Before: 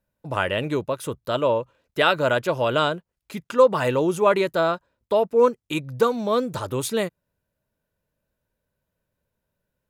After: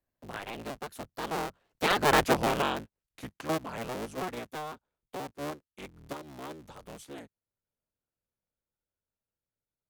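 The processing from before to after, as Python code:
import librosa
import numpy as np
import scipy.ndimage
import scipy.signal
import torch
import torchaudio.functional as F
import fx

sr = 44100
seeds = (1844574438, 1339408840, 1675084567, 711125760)

y = fx.cycle_switch(x, sr, every=3, mode='inverted')
y = fx.doppler_pass(y, sr, speed_mps=27, closest_m=3.3, pass_at_s=2.22)
y = fx.band_squash(y, sr, depth_pct=40)
y = y * 10.0 ** (5.5 / 20.0)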